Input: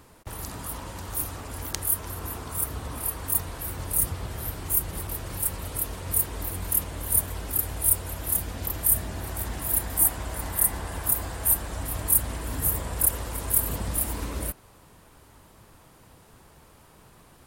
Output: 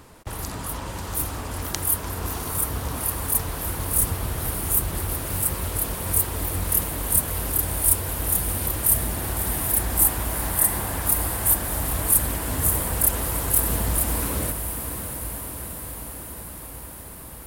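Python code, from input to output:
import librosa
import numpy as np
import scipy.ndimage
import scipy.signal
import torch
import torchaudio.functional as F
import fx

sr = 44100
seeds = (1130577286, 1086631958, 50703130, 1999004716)

p1 = 10.0 ** (-16.0 / 20.0) * np.tanh(x / 10.0 ** (-16.0 / 20.0))
p2 = x + F.gain(torch.from_numpy(p1), -6.0).numpy()
p3 = fx.echo_diffused(p2, sr, ms=656, feedback_pct=72, wet_db=-8.5)
p4 = fx.doppler_dist(p3, sr, depth_ms=0.33)
y = F.gain(torch.from_numpy(p4), 1.5).numpy()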